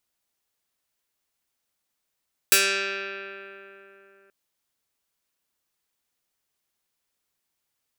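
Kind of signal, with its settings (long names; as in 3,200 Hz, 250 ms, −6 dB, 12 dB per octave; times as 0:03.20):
Karplus-Strong string G3, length 1.78 s, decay 3.55 s, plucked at 0.19, medium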